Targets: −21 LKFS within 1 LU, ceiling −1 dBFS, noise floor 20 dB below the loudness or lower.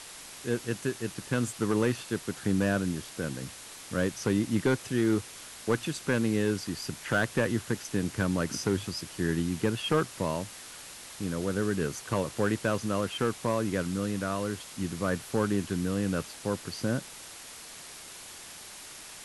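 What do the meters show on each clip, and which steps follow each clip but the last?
share of clipped samples 0.3%; peaks flattened at −17.5 dBFS; background noise floor −46 dBFS; target noise floor −51 dBFS; integrated loudness −30.5 LKFS; sample peak −17.5 dBFS; target loudness −21.0 LKFS
→ clipped peaks rebuilt −17.5 dBFS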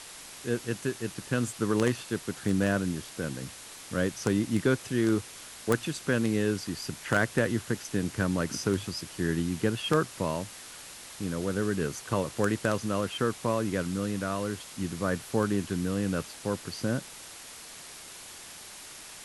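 share of clipped samples 0.0%; background noise floor −46 dBFS; target noise floor −50 dBFS
→ broadband denoise 6 dB, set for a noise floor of −46 dBFS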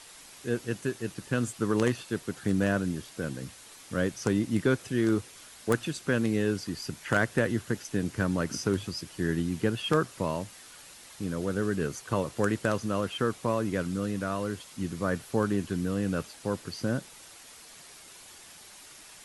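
background noise floor −50 dBFS; target noise floor −51 dBFS
→ broadband denoise 6 dB, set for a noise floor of −50 dBFS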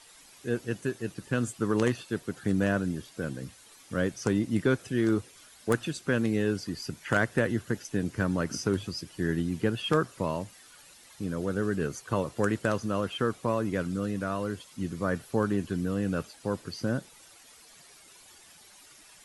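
background noise floor −55 dBFS; integrated loudness −30.5 LKFS; sample peak −9.0 dBFS; target loudness −21.0 LKFS
→ level +9.5 dB
brickwall limiter −1 dBFS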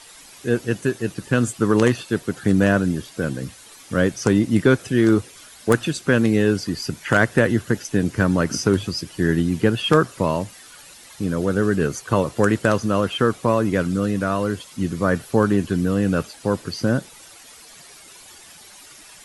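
integrated loudness −21.0 LKFS; sample peak −1.0 dBFS; background noise floor −45 dBFS

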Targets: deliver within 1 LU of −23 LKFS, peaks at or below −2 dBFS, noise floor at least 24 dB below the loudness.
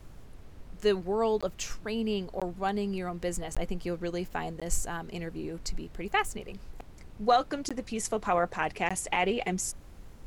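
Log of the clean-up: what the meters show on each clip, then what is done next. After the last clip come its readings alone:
number of dropouts 6; longest dropout 16 ms; background noise floor −49 dBFS; target noise floor −56 dBFS; integrated loudness −31.5 LKFS; sample peak −13.0 dBFS; target loudness −23.0 LKFS
→ repair the gap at 0:01.41/0:02.40/0:03.55/0:04.60/0:07.69/0:08.89, 16 ms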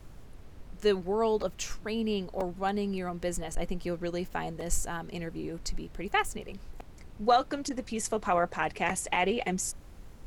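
number of dropouts 0; background noise floor −49 dBFS; target noise floor −56 dBFS
→ noise reduction from a noise print 7 dB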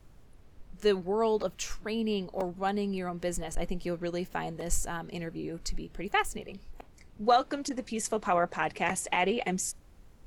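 background noise floor −55 dBFS; target noise floor −56 dBFS
→ noise reduction from a noise print 6 dB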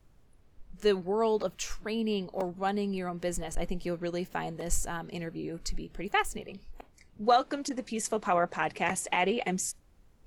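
background noise floor −60 dBFS; integrated loudness −31.5 LKFS; sample peak −13.0 dBFS; target loudness −23.0 LKFS
→ level +8.5 dB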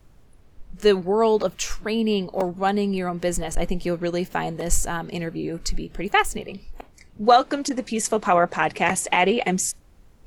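integrated loudness −23.0 LKFS; sample peak −4.5 dBFS; background noise floor −52 dBFS

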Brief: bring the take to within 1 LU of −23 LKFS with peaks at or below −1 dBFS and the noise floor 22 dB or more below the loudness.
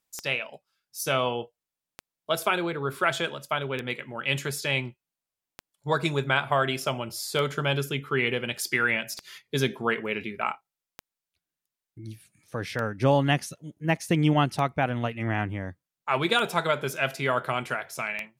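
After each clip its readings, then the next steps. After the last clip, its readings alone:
number of clicks 11; integrated loudness −27.5 LKFS; sample peak −7.5 dBFS; target loudness −23.0 LKFS
→ click removal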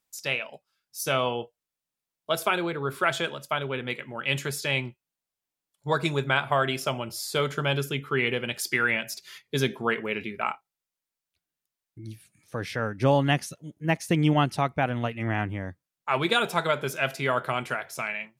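number of clicks 0; integrated loudness −27.5 LKFS; sample peak −7.5 dBFS; target loudness −23.0 LKFS
→ level +4.5 dB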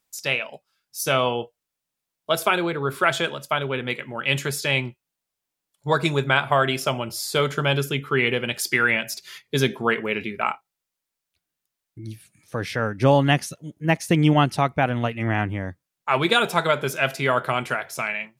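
integrated loudness −23.0 LKFS; sample peak −3.0 dBFS; background noise floor −84 dBFS

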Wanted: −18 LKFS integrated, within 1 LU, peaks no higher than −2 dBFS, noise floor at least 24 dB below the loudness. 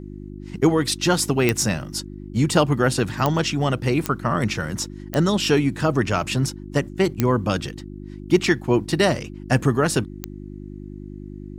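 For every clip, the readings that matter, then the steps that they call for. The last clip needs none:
number of clicks 6; mains hum 50 Hz; hum harmonics up to 350 Hz; level of the hum −35 dBFS; integrated loudness −21.5 LKFS; sample peak −3.5 dBFS; target loudness −18.0 LKFS
→ click removal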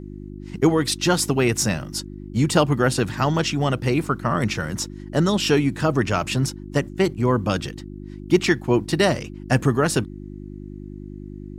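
number of clicks 0; mains hum 50 Hz; hum harmonics up to 350 Hz; level of the hum −35 dBFS
→ hum removal 50 Hz, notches 7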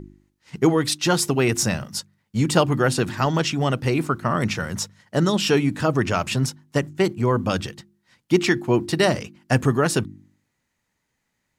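mains hum none found; integrated loudness −22.0 LKFS; sample peak −3.5 dBFS; target loudness −18.0 LKFS
→ level +4 dB
brickwall limiter −2 dBFS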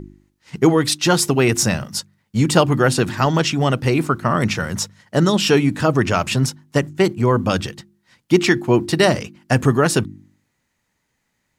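integrated loudness −18.0 LKFS; sample peak −2.0 dBFS; background noise floor −72 dBFS

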